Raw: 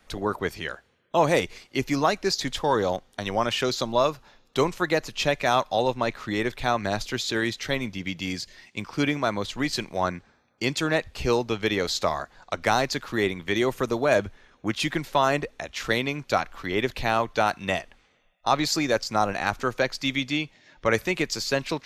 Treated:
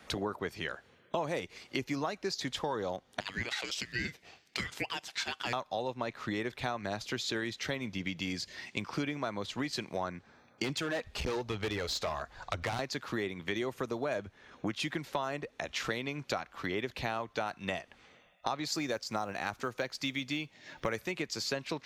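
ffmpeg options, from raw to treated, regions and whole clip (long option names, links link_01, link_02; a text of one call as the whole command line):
ffmpeg -i in.wav -filter_complex "[0:a]asettb=1/sr,asplit=3[link_01][link_02][link_03];[link_01]atrim=end=3.204[link_04];[link_02]atrim=start=3.2:end=5.53,asetpts=PTS-STARTPTS,afade=type=in:duration=0.004:curve=qsin,afade=type=out:start_time=2.326:duration=0.004:curve=qsin,highpass=frequency=890:width=0.5412,highpass=frequency=890:width=1.3066,aeval=exprs='val(0)*sin(2*PI*960*n/s)':channel_layout=same[link_05];[link_03]atrim=start=5.526[link_06];[link_04][link_05]acrossfade=duration=0.004:curve1=hsin:curve2=qsin[link_07];[link_07][link_06]acrossfade=duration=0.004:curve1=qsin:curve2=hsin,asettb=1/sr,asplit=3[link_08][link_09][link_10];[link_08]atrim=end=10.644[link_11];[link_09]atrim=start=10.64:end=12.79,asetpts=PTS-STARTPTS,afade=type=in:duration=0.004:curve=qsin,afade=type=out:start_time=2.146:duration=0.004:curve=qsin,asubboost=boost=11:cutoff=83,aphaser=in_gain=1:out_gain=1:delay=4.9:decay=0.33:speed=1:type=sinusoidal,volume=21.5dB,asoftclip=hard,volume=-21.5dB[link_12];[link_10]atrim=start=12.786[link_13];[link_11][link_12]acrossfade=duration=0.004:curve1=hsin:curve2=qsin[link_14];[link_14][link_13]acrossfade=duration=0.004:curve1=qsin:curve2=hsin,asettb=1/sr,asplit=3[link_15][link_16][link_17];[link_15]atrim=end=18.724[link_18];[link_16]atrim=start=18.72:end=21.12,asetpts=PTS-STARTPTS,afade=type=in:duration=0.004:curve=qsin,afade=type=out:start_time=2.396:duration=0.004:curve=qsin,highshelf=frequency=7700:gain=6,acrusher=bits=8:mode=log:mix=0:aa=0.000001[link_19];[link_17]atrim=start=21.116[link_20];[link_18][link_19]acrossfade=duration=0.004:curve1=hsin:curve2=qsin[link_21];[link_21][link_20]acrossfade=duration=0.004:curve1=qsin:curve2=hsin,highpass=77,highshelf=frequency=7600:gain=-5.5,acompressor=threshold=-39dB:ratio=5,volume=5.5dB" out.wav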